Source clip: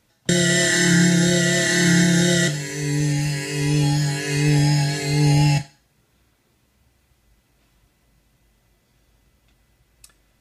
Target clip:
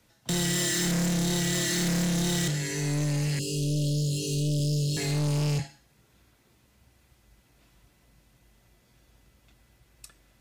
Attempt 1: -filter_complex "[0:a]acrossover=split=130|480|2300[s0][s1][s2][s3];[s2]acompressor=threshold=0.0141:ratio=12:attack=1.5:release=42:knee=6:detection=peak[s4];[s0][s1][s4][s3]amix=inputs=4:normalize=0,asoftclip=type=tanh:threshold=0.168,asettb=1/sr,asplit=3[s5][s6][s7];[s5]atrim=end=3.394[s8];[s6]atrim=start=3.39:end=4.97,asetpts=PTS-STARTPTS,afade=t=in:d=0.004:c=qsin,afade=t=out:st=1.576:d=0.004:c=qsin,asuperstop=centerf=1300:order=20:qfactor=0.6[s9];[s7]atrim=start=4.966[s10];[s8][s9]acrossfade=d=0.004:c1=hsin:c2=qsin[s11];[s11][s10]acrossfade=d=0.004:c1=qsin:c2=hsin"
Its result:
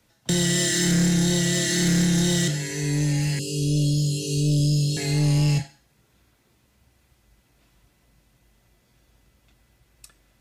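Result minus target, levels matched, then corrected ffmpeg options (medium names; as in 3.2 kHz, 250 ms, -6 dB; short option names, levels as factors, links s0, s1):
saturation: distortion -7 dB
-filter_complex "[0:a]acrossover=split=130|480|2300[s0][s1][s2][s3];[s2]acompressor=threshold=0.0141:ratio=12:attack=1.5:release=42:knee=6:detection=peak[s4];[s0][s1][s4][s3]amix=inputs=4:normalize=0,asoftclip=type=tanh:threshold=0.0596,asettb=1/sr,asplit=3[s5][s6][s7];[s5]atrim=end=3.394[s8];[s6]atrim=start=3.39:end=4.97,asetpts=PTS-STARTPTS,afade=t=in:d=0.004:c=qsin,afade=t=out:st=1.576:d=0.004:c=qsin,asuperstop=centerf=1300:order=20:qfactor=0.6[s9];[s7]atrim=start=4.966[s10];[s8][s9]acrossfade=d=0.004:c1=hsin:c2=qsin[s11];[s11][s10]acrossfade=d=0.004:c1=qsin:c2=hsin"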